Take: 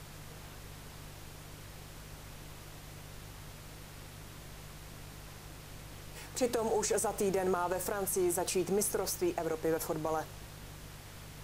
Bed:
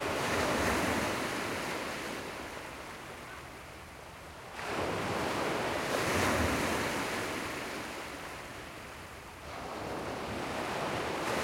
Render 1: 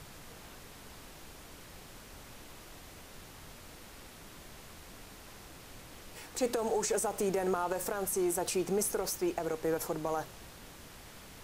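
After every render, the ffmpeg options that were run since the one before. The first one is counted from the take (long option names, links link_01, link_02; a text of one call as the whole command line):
ffmpeg -i in.wav -af "bandreject=frequency=50:width_type=h:width=4,bandreject=frequency=100:width_type=h:width=4,bandreject=frequency=150:width_type=h:width=4" out.wav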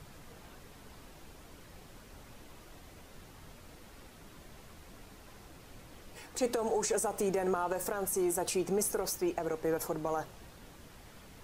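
ffmpeg -i in.wav -af "afftdn=noise_reduction=6:noise_floor=-52" out.wav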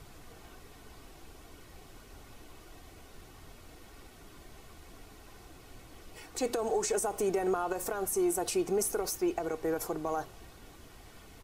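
ffmpeg -i in.wav -af "bandreject=frequency=1700:width=17,aecho=1:1:2.7:0.34" out.wav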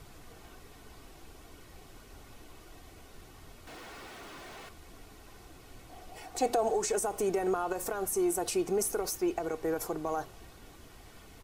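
ffmpeg -i in.wav -filter_complex "[0:a]asettb=1/sr,asplit=3[link_01][link_02][link_03];[link_01]atrim=end=3.674[link_04];[link_02]atrim=start=3.67:end=4.69,asetpts=PTS-STARTPTS,afade=type=in:duration=0.004:curve=qsin,afade=type=out:start_time=1.016:duration=0.004:curve=qsin,asplit=2[link_05][link_06];[link_06]highpass=frequency=720:poles=1,volume=38dB,asoftclip=type=tanh:threshold=-38.5dB[link_07];[link_05][link_07]amix=inputs=2:normalize=0,lowpass=frequency=2400:poles=1,volume=-6dB[link_08];[link_03]atrim=start=4.686[link_09];[link_04][link_08]acrossfade=duration=0.004:curve1=hsin:curve2=qsin[link_10];[link_10][link_09]acrossfade=duration=0.004:curve1=qsin:curve2=hsin,asettb=1/sr,asplit=3[link_11][link_12][link_13];[link_11]atrim=end=5.894[link_14];[link_12]atrim=start=5.89:end=6.69,asetpts=PTS-STARTPTS,afade=type=in:duration=0.004:curve=qsin,afade=type=out:start_time=0.796:duration=0.004:curve=qsin,equalizer=frequency=730:width_type=o:width=0.33:gain=14[link_15];[link_13]atrim=start=6.686[link_16];[link_14][link_15]acrossfade=duration=0.004:curve1=hsin:curve2=qsin[link_17];[link_17][link_16]acrossfade=duration=0.004:curve1=qsin:curve2=hsin" out.wav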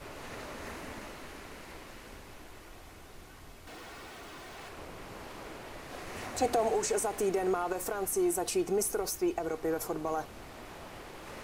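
ffmpeg -i in.wav -i bed.wav -filter_complex "[1:a]volume=-13dB[link_01];[0:a][link_01]amix=inputs=2:normalize=0" out.wav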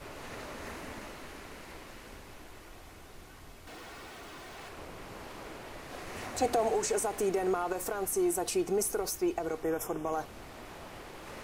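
ffmpeg -i in.wav -filter_complex "[0:a]asettb=1/sr,asplit=3[link_01][link_02][link_03];[link_01]atrim=end=9.634[link_04];[link_02]atrim=start=9.63:end=10.13,asetpts=PTS-STARTPTS,afade=type=in:duration=0.004:curve=qsin,afade=type=out:start_time=0.496:duration=0.004:curve=qsin,asuperstop=centerf=4300:order=20:qfactor=3.2[link_05];[link_03]atrim=start=10.126[link_06];[link_04][link_05]acrossfade=duration=0.004:curve1=hsin:curve2=qsin[link_07];[link_07][link_06]acrossfade=duration=0.004:curve1=qsin:curve2=hsin" out.wav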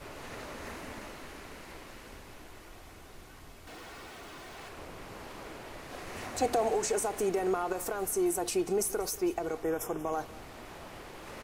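ffmpeg -i in.wav -af "aecho=1:1:187:0.106" out.wav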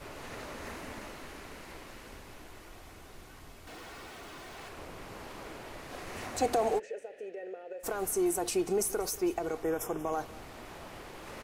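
ffmpeg -i in.wav -filter_complex "[0:a]asplit=3[link_01][link_02][link_03];[link_01]afade=type=out:start_time=6.78:duration=0.02[link_04];[link_02]asplit=3[link_05][link_06][link_07];[link_05]bandpass=frequency=530:width_type=q:width=8,volume=0dB[link_08];[link_06]bandpass=frequency=1840:width_type=q:width=8,volume=-6dB[link_09];[link_07]bandpass=frequency=2480:width_type=q:width=8,volume=-9dB[link_10];[link_08][link_09][link_10]amix=inputs=3:normalize=0,afade=type=in:start_time=6.78:duration=0.02,afade=type=out:start_time=7.83:duration=0.02[link_11];[link_03]afade=type=in:start_time=7.83:duration=0.02[link_12];[link_04][link_11][link_12]amix=inputs=3:normalize=0" out.wav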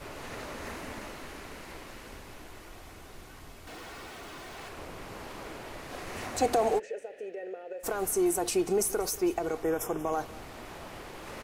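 ffmpeg -i in.wav -af "volume=2.5dB" out.wav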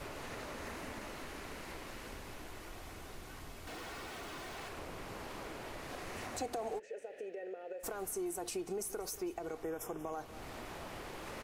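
ffmpeg -i in.wav -af "acompressor=threshold=-43dB:ratio=2.5" out.wav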